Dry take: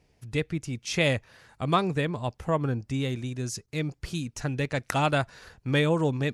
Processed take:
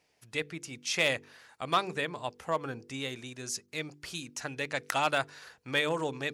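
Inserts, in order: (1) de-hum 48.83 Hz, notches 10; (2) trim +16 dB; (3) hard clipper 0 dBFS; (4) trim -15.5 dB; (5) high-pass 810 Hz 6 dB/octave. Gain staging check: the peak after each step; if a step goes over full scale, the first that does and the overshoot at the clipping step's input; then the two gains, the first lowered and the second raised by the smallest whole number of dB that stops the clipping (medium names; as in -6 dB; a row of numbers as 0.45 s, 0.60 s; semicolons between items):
-10.5 dBFS, +5.5 dBFS, 0.0 dBFS, -15.5 dBFS, -12.5 dBFS; step 2, 5.5 dB; step 2 +10 dB, step 4 -9.5 dB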